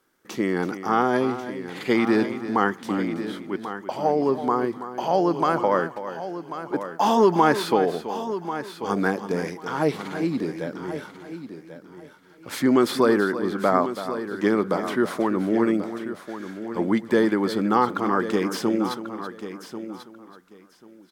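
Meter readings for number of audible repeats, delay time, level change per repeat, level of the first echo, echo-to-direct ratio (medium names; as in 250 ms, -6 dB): 4, 329 ms, no regular repeats, -12.0 dB, -8.5 dB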